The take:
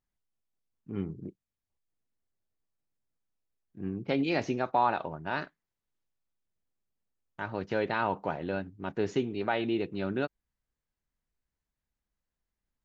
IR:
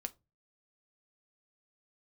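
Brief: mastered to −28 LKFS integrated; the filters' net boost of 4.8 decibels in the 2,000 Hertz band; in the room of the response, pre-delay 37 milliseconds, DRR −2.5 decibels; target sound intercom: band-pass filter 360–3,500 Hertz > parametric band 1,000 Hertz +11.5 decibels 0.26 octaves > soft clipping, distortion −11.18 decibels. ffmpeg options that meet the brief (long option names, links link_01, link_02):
-filter_complex "[0:a]equalizer=frequency=2000:width_type=o:gain=6.5,asplit=2[link_01][link_02];[1:a]atrim=start_sample=2205,adelay=37[link_03];[link_02][link_03]afir=irnorm=-1:irlink=0,volume=4.5dB[link_04];[link_01][link_04]amix=inputs=2:normalize=0,highpass=360,lowpass=3500,equalizer=frequency=1000:width_type=o:width=0.26:gain=11.5,asoftclip=threshold=-13dB,volume=-2dB"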